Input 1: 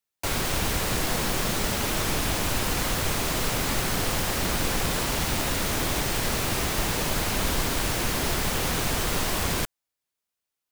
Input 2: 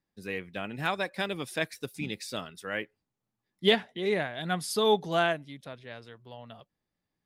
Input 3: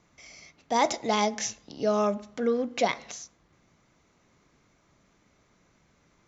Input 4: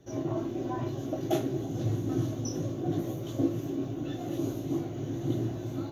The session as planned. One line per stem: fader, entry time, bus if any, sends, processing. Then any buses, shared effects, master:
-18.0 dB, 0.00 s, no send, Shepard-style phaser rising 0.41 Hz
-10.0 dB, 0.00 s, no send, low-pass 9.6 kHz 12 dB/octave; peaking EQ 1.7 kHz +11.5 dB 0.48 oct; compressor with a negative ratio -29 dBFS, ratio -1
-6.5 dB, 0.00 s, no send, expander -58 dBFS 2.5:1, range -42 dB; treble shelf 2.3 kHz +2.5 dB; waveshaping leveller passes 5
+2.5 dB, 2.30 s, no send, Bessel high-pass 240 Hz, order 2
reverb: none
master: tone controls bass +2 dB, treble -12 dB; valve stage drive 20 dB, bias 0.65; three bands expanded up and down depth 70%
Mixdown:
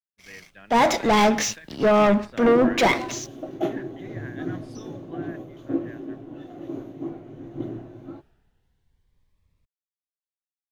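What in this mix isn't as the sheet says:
stem 1 -18.0 dB -> -28.5 dB; master: missing valve stage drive 20 dB, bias 0.65

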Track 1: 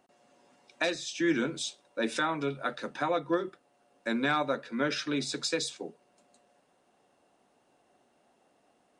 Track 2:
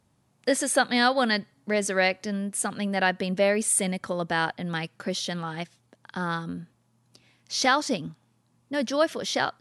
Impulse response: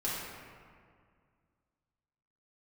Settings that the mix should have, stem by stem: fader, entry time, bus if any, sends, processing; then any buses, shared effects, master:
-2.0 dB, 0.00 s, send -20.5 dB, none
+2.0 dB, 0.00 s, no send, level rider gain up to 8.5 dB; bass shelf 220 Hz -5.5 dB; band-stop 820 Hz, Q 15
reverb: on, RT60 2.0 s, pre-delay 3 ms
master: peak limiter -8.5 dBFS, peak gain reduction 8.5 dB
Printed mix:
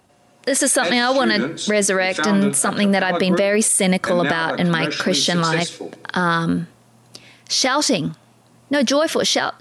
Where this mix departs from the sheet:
stem 1 -2.0 dB -> +7.5 dB; stem 2 +2.0 dB -> +9.0 dB

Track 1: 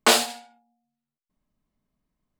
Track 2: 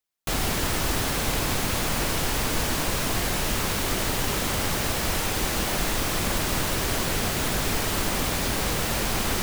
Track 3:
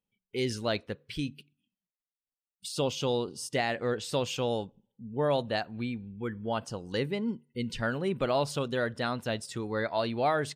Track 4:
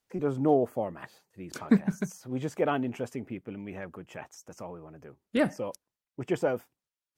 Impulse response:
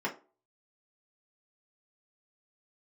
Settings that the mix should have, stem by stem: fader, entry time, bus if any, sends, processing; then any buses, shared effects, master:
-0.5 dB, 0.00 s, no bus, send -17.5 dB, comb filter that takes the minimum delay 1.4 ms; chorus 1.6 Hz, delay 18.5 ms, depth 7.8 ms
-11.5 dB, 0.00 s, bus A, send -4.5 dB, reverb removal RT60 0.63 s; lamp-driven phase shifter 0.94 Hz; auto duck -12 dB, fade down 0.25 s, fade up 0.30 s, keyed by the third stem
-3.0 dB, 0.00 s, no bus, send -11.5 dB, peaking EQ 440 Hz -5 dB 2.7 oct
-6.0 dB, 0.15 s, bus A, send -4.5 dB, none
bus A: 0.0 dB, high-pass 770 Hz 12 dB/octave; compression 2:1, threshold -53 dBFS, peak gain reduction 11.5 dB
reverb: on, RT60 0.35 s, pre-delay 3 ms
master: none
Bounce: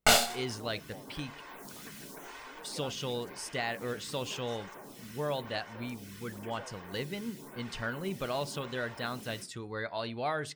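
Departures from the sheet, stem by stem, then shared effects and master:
stem 4: send off; reverb return -8.0 dB

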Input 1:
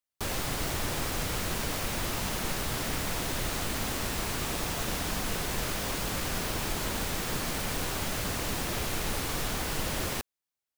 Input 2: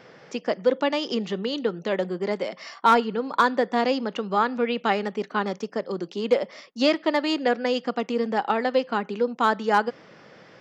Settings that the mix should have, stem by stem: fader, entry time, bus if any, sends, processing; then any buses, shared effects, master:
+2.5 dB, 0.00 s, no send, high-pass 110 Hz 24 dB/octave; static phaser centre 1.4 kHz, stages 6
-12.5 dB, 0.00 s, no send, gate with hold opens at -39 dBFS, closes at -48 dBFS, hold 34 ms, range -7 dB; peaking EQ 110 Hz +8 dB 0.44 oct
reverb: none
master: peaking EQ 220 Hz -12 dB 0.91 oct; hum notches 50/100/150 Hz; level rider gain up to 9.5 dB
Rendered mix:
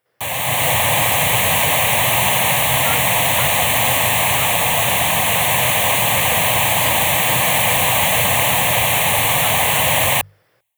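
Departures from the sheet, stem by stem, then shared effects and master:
stem 1 +2.5 dB -> +13.0 dB; stem 2 -12.5 dB -> -18.5 dB

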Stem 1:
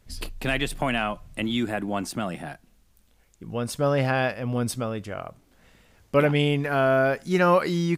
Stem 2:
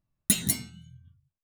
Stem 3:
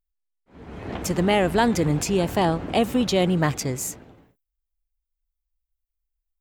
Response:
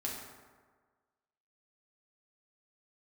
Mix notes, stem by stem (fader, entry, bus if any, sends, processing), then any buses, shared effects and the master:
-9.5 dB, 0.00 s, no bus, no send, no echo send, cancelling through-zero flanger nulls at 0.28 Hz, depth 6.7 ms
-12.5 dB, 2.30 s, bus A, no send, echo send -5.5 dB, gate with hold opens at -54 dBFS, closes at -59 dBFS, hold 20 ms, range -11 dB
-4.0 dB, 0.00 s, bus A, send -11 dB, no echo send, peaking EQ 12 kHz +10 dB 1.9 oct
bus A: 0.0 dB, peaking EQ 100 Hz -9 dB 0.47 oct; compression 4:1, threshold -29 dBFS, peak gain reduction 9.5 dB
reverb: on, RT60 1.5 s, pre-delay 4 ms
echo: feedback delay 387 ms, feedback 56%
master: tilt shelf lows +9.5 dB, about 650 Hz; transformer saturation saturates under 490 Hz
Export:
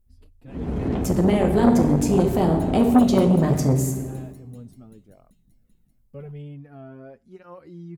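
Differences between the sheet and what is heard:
stem 1 -9.5 dB -> -20.0 dB; stem 2 -12.5 dB -> -4.0 dB; stem 3 -4.0 dB -> +6.5 dB

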